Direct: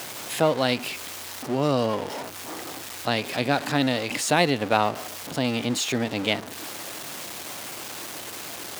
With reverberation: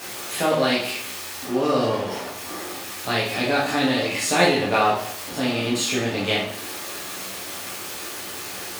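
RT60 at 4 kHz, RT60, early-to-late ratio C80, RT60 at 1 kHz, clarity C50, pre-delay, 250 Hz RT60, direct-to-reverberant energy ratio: 0.55 s, 0.60 s, 8.0 dB, 0.60 s, 3.5 dB, 5 ms, 0.60 s, -7.5 dB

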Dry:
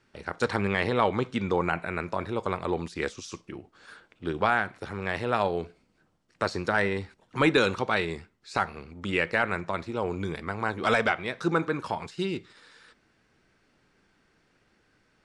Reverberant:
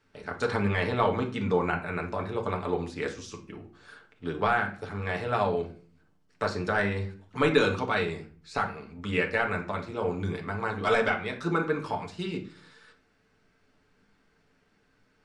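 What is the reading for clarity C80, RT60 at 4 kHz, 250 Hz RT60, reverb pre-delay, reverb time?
17.5 dB, 0.30 s, 0.70 s, 5 ms, 0.45 s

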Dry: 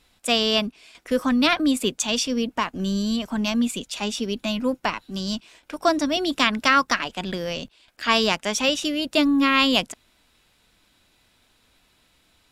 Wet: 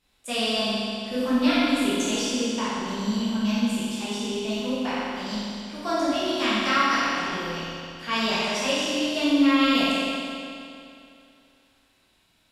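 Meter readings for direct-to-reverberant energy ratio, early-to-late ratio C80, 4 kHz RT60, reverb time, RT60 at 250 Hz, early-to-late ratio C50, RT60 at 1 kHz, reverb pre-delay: -10.5 dB, -2.0 dB, 2.4 s, 2.6 s, 2.6 s, -4.0 dB, 2.6 s, 12 ms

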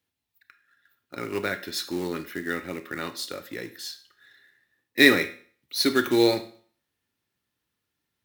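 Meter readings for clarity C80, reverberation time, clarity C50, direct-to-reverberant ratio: 18.0 dB, 0.45 s, 13.5 dB, 10.5 dB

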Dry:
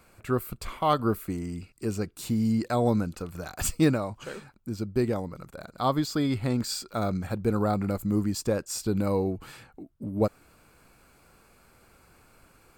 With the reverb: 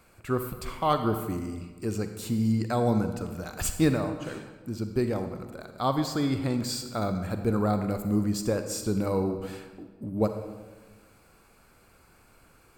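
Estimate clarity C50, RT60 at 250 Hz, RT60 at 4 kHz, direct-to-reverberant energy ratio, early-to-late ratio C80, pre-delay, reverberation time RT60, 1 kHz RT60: 8.0 dB, 1.5 s, 0.90 s, 7.5 dB, 9.5 dB, 37 ms, 1.4 s, 1.3 s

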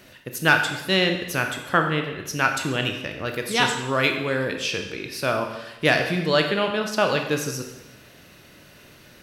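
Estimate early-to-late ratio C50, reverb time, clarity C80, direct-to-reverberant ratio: 6.5 dB, 1.0 s, 8.5 dB, 4.0 dB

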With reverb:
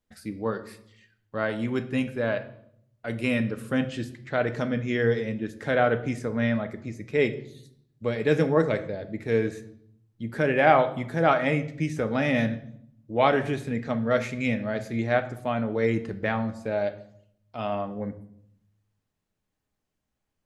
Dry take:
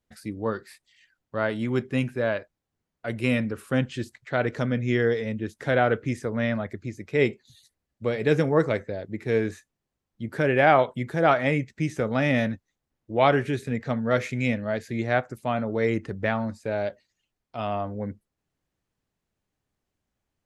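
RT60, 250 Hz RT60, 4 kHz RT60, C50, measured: 0.70 s, 1.0 s, 0.60 s, 14.0 dB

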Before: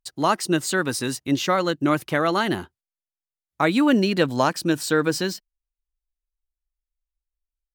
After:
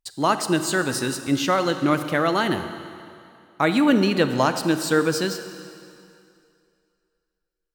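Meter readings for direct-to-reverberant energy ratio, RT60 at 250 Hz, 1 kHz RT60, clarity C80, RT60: 9.0 dB, 2.4 s, 2.6 s, 10.0 dB, 2.5 s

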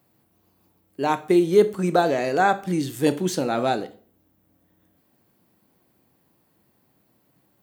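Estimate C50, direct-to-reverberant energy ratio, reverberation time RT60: 17.0 dB, 11.5 dB, 0.45 s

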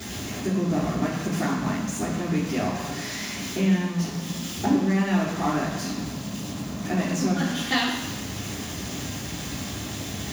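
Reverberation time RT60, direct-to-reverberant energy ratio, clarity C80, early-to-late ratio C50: 1.0 s, -9.5 dB, 5.5 dB, 3.0 dB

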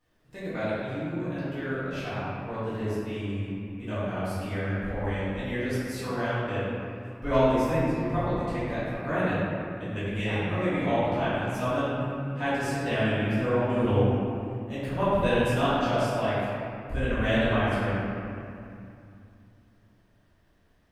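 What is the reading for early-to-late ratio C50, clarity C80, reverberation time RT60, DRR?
-4.5 dB, -2.5 dB, 2.5 s, -14.5 dB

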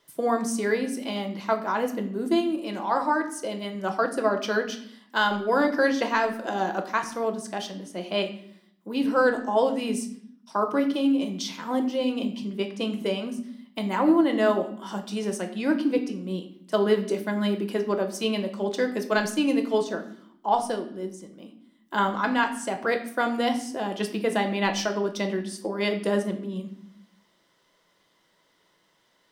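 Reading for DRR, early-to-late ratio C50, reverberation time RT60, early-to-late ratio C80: 5.0 dB, 11.0 dB, 0.65 s, 14.0 dB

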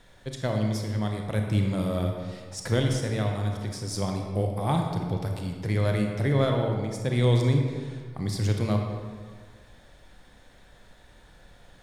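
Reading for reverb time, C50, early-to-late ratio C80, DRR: 1.8 s, 3.5 dB, 5.0 dB, 2.0 dB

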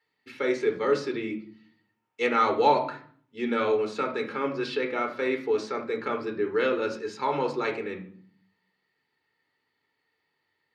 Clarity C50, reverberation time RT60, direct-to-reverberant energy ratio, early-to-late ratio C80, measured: 9.5 dB, 0.50 s, 3.5 dB, 14.5 dB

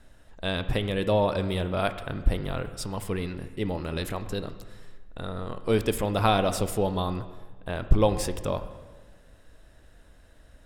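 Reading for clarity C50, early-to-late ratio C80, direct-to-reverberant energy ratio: 12.0 dB, 13.0 dB, 10.5 dB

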